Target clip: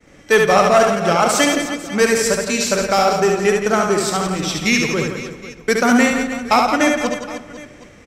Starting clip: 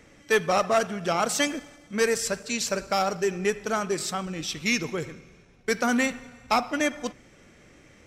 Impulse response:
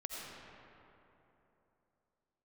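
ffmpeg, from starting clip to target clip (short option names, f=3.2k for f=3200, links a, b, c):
-filter_complex "[0:a]asplit=2[a][b];[b]aecho=0:1:70|168|305.2|497.3|766.2:0.631|0.398|0.251|0.158|0.1[c];[a][c]amix=inputs=2:normalize=0,agate=range=-33dB:threshold=-49dB:ratio=3:detection=peak,asplit=2[d][e];[1:a]atrim=start_sample=2205,afade=t=out:st=0.36:d=0.01,atrim=end_sample=16317,lowpass=2.5k[f];[e][f]afir=irnorm=-1:irlink=0,volume=-9dB[g];[d][g]amix=inputs=2:normalize=0,volume=7dB"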